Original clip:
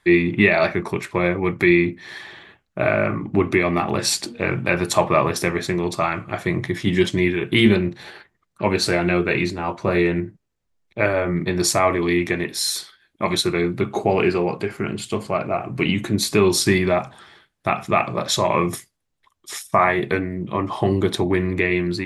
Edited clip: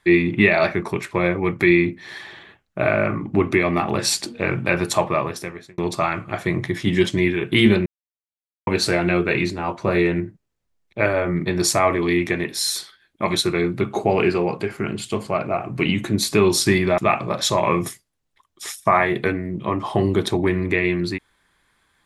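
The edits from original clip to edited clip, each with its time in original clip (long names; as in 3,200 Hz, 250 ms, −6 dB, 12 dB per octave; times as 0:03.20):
0:04.81–0:05.78: fade out
0:07.86–0:08.67: silence
0:16.98–0:17.85: remove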